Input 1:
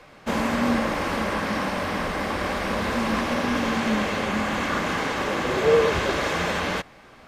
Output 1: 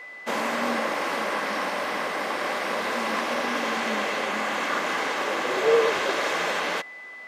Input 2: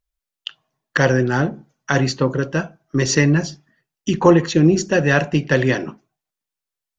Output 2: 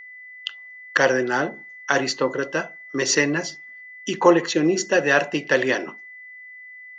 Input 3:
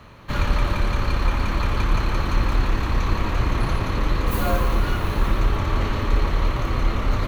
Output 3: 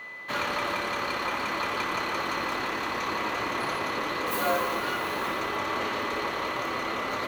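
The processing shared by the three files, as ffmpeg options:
-af "highpass=380,aeval=exprs='val(0)+0.0112*sin(2*PI*2000*n/s)':c=same"

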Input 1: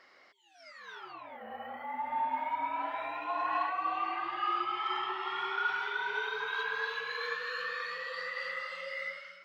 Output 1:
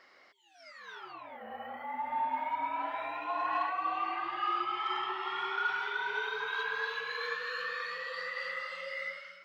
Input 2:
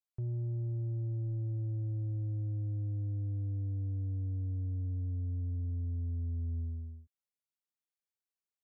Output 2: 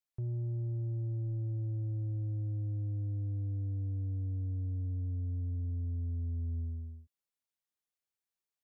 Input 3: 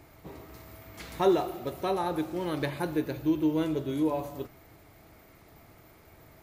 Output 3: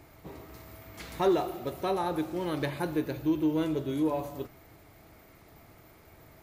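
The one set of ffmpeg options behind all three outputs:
-af "asoftclip=type=tanh:threshold=0.158"

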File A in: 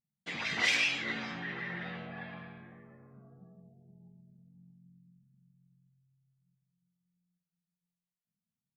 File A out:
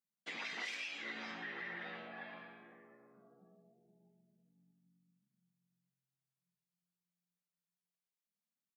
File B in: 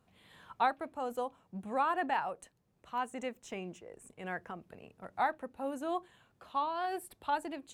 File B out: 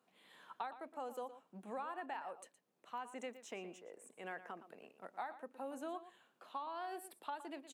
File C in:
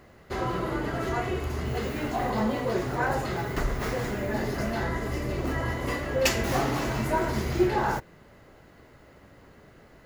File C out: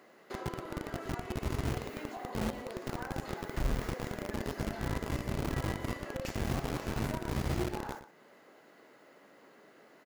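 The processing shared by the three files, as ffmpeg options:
-filter_complex "[0:a]acrossover=split=210[s0][s1];[s0]acrusher=bits=4:mix=0:aa=0.000001[s2];[s1]acompressor=threshold=0.0141:ratio=8[s3];[s2][s3]amix=inputs=2:normalize=0,asplit=2[s4][s5];[s5]adelay=116.6,volume=0.224,highshelf=f=4000:g=-2.62[s6];[s4][s6]amix=inputs=2:normalize=0,volume=0.668"

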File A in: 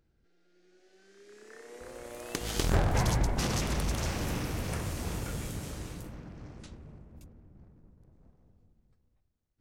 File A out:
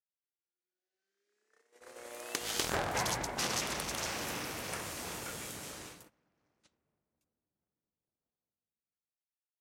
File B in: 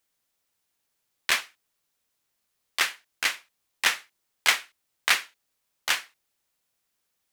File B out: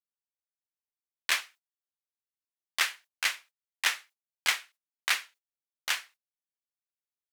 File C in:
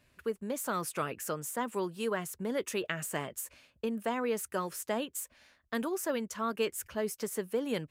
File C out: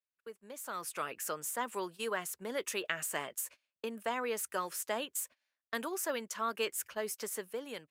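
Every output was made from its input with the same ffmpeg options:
-af "highpass=f=760:p=1,agate=range=0.0631:threshold=0.00355:ratio=16:detection=peak,dynaudnorm=f=610:g=3:m=3.16,volume=0.376"

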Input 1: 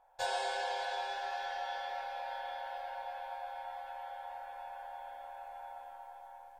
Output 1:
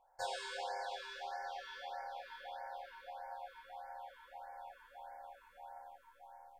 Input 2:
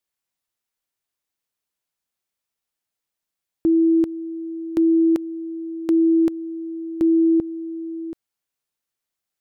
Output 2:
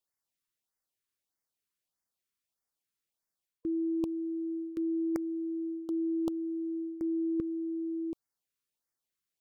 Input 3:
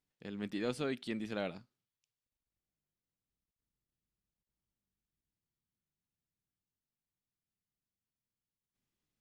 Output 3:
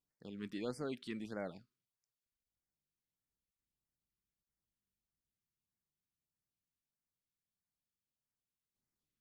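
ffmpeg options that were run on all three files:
-af "areverse,acompressor=threshold=0.0562:ratio=12,areverse,afftfilt=real='re*(1-between(b*sr/1024,630*pow(3300/630,0.5+0.5*sin(2*PI*1.6*pts/sr))/1.41,630*pow(3300/630,0.5+0.5*sin(2*PI*1.6*pts/sr))*1.41))':imag='im*(1-between(b*sr/1024,630*pow(3300/630,0.5+0.5*sin(2*PI*1.6*pts/sr))/1.41,630*pow(3300/630,0.5+0.5*sin(2*PI*1.6*pts/sr))*1.41))':win_size=1024:overlap=0.75,volume=0.596"

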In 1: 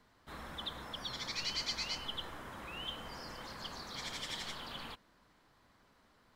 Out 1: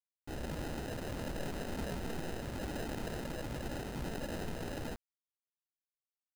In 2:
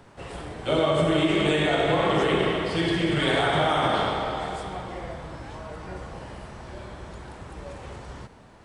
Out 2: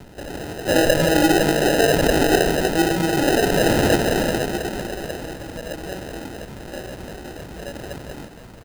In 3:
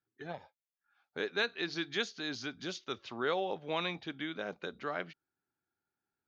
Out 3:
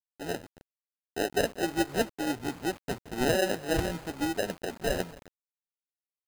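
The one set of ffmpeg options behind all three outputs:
-filter_complex "[0:a]asplit=2[s0][s1];[s1]alimiter=limit=0.112:level=0:latency=1,volume=0.794[s2];[s0][s2]amix=inputs=2:normalize=0,flanger=delay=0.5:depth=3.3:regen=38:speed=2:shape=triangular,lowpass=1500,acrossover=split=160[s3][s4];[s3]acompressor=threshold=0.00355:ratio=6[s5];[s5][s4]amix=inputs=2:normalize=0,acrusher=samples=39:mix=1:aa=0.000001,aecho=1:1:263|526|789:0.0708|0.0269|0.0102,acrusher=bits=8:mix=0:aa=0.000001,volume=2.37"

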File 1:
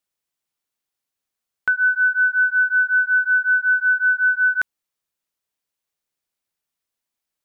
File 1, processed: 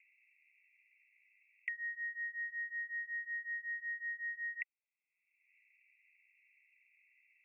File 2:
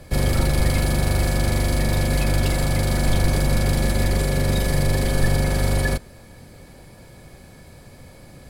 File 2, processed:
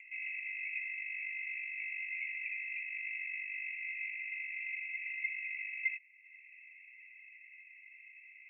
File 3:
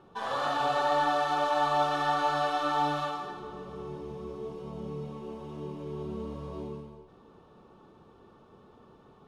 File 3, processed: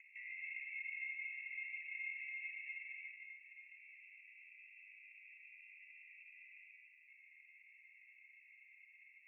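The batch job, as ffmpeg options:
-af "aeval=exprs='val(0)*sin(2*PI*370*n/s)':c=same,asuperpass=centerf=2300:order=20:qfactor=3,acompressor=mode=upward:threshold=0.00398:ratio=2.5,volume=1.12"

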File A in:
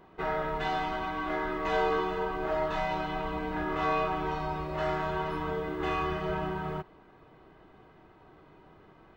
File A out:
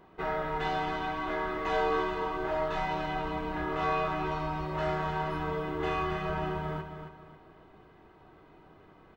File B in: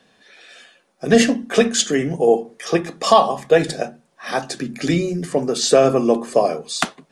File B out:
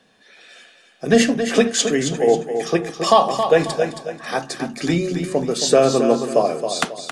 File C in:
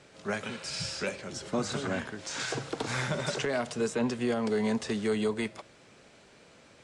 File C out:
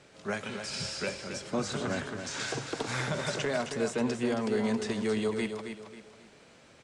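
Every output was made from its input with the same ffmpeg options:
-af "aecho=1:1:271|542|813|1084:0.398|0.135|0.046|0.0156,volume=0.891"

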